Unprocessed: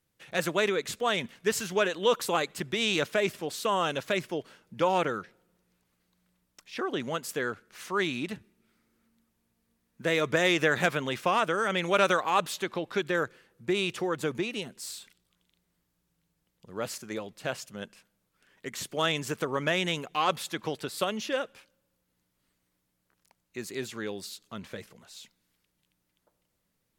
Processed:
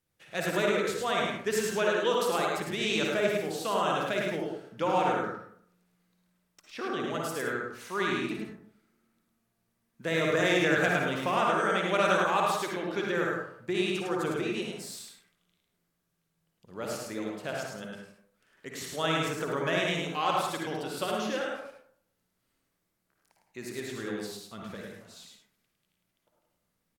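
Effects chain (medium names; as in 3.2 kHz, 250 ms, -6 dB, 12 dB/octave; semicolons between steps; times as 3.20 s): delay 106 ms -4 dB; reverberation RT60 0.60 s, pre-delay 47 ms, DRR 0 dB; trim -4.5 dB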